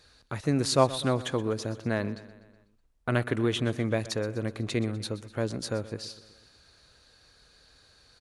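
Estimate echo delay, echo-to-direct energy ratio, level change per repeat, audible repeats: 124 ms, -15.0 dB, -4.5 dB, 4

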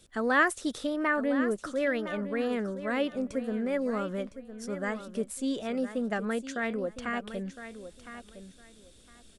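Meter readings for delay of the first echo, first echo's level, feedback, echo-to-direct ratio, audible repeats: 1010 ms, -12.0 dB, 20%, -12.0 dB, 2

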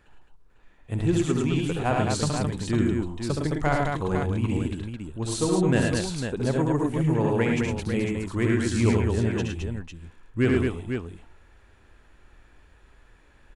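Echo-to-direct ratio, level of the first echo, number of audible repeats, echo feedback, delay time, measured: 1.5 dB, -4.0 dB, 4, no regular repeats, 70 ms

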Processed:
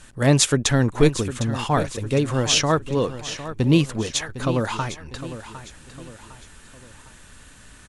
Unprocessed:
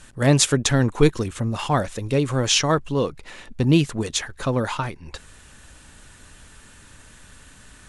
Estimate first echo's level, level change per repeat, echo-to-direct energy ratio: -13.0 dB, -7.5 dB, -12.0 dB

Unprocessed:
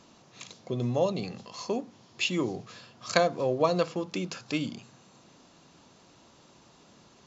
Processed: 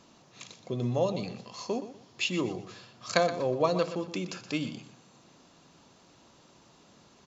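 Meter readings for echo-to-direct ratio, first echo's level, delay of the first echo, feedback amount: -12.0 dB, -12.5 dB, 122 ms, 26%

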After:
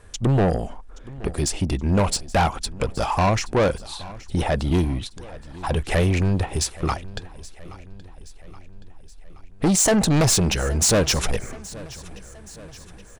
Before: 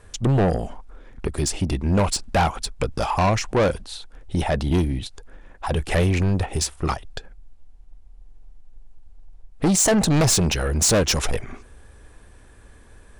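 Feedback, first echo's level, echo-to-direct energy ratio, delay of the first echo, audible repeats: 56%, -19.5 dB, -18.0 dB, 824 ms, 4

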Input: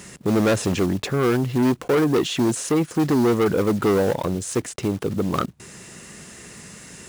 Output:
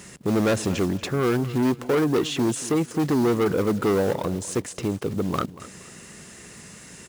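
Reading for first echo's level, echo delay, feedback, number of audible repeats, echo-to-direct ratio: -17.0 dB, 234 ms, 30%, 2, -16.5 dB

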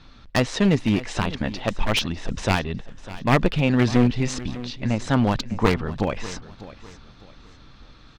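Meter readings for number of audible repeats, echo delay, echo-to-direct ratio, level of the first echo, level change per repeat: 2, 601 ms, -16.0 dB, -16.5 dB, -10.0 dB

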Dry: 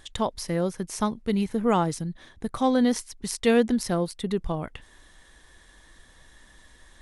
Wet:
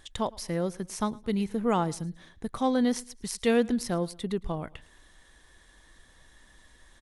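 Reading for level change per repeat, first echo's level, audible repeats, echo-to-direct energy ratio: -8.5 dB, -23.0 dB, 2, -22.5 dB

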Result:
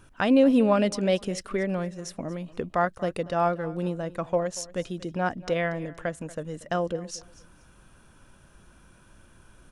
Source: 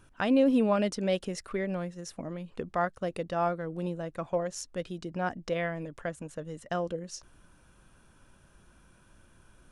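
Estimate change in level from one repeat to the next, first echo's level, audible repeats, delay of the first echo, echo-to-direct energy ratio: -12.0 dB, -19.5 dB, 2, 235 ms, -19.0 dB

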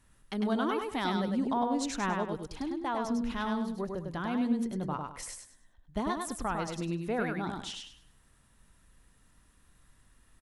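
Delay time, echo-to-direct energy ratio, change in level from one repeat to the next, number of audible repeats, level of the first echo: 101 ms, -3.5 dB, -11.0 dB, 3, -4.0 dB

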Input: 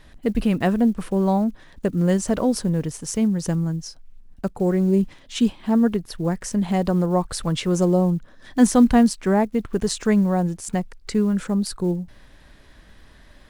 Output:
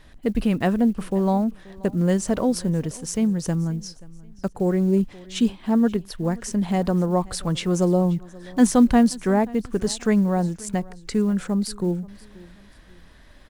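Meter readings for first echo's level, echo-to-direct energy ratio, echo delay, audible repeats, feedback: -22.0 dB, -21.5 dB, 531 ms, 2, 35%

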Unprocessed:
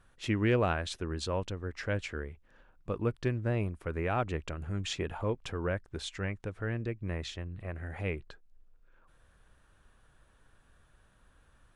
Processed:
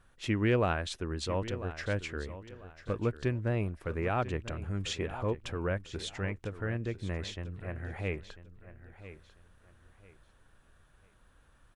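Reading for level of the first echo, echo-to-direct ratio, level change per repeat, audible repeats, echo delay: -14.0 dB, -13.5 dB, -11.0 dB, 2, 995 ms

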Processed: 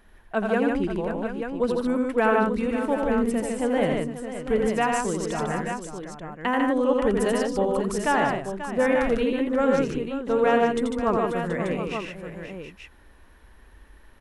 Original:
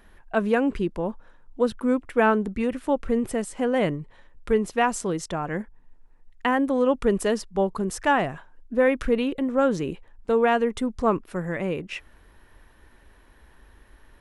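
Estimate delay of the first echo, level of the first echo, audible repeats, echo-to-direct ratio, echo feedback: 85 ms, -4.5 dB, 5, 0.0 dB, no regular repeats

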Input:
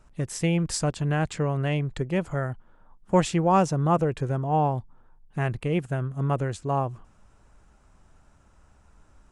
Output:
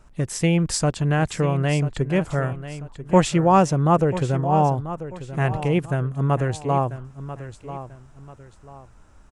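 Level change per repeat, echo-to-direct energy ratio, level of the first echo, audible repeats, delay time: -9.5 dB, -12.5 dB, -13.0 dB, 2, 990 ms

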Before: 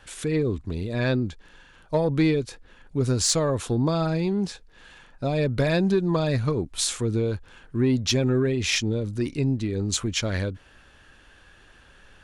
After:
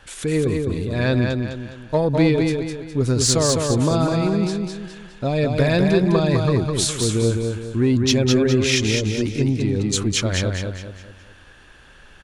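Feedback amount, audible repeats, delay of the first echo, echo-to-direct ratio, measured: 40%, 4, 206 ms, -3.0 dB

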